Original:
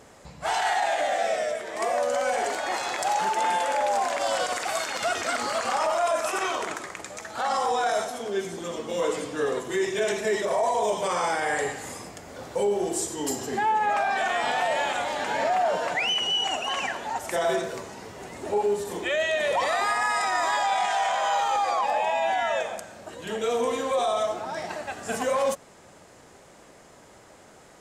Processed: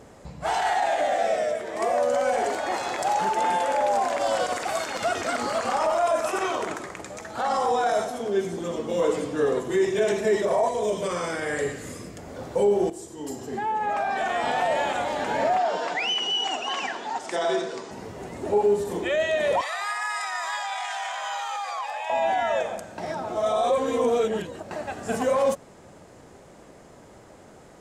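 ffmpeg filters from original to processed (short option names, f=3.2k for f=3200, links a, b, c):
-filter_complex "[0:a]asettb=1/sr,asplit=3[a][b][c];[a]atrim=end=10.684[d];[b]atrim=start=10.68:end=12.18,asetpts=PTS-STARTPTS,afade=t=in:d=0.004:c=qsin,afade=t=out:st=1.496:d=0.004:c=qsin,equalizer=f=830:t=o:w=0.5:g=-14.5[e];[c]atrim=start=12.176[f];[d][e]acrossfade=d=0.004:c1=hsin:c2=qsin[g];[g][f]acrossfade=d=0.004:c1=qsin:c2=hsin,asettb=1/sr,asplit=3[h][i][j];[h]atrim=end=15.574[k];[i]atrim=start=15.57:end=17.91,asetpts=PTS-STARTPTS,afade=t=in:d=0.004:c=qsin,afade=t=out:st=2.336:d=0.004:c=qsin,highpass=280,equalizer=f=570:t=q:w=4:g=-7,equalizer=f=3.5k:t=q:w=4:g=5,equalizer=f=5k:t=q:w=4:g=6,lowpass=f=8.5k:w=0.5412,lowpass=f=8.5k:w=1.3066[l];[j]atrim=start=17.906[m];[k][l]acrossfade=d=0.004:c1=hsin:c2=qsin[n];[n][m]acrossfade=d=0.004:c1=qsin:c2=hsin,asettb=1/sr,asplit=3[o][p][q];[o]atrim=end=19.614[r];[p]atrim=start=19.61:end=22.1,asetpts=PTS-STARTPTS,afade=t=in:d=0.004:c=qsin,afade=t=out:st=2.486:d=0.004:c=qsin,highpass=1.3k[s];[q]atrim=start=22.096[t];[r][s]acrossfade=d=0.004:c1=hsin:c2=qsin[u];[u][t]acrossfade=d=0.004:c1=qsin:c2=hsin,asplit=4[v][w][x][y];[v]atrim=end=12.9,asetpts=PTS-STARTPTS,afade=t=out:st=12.896:d=0.004:c=hsin:silence=0.223872[z];[w]atrim=start=12.9:end=22.982,asetpts=PTS-STARTPTS,afade=t=in:d=1.68:silence=0.223872[aa];[x]atrim=start=22.978:end=24.712,asetpts=PTS-STARTPTS,areverse[ab];[y]atrim=start=24.708[ac];[z][aa]concat=n=2:v=0:a=1[ad];[ad][ab]acrossfade=d=0.004:c1=hsin:c2=hsin[ae];[ae][ac]acrossfade=d=0.004:c1=hsin:c2=hsin,tiltshelf=f=770:g=4.5,volume=1.5dB"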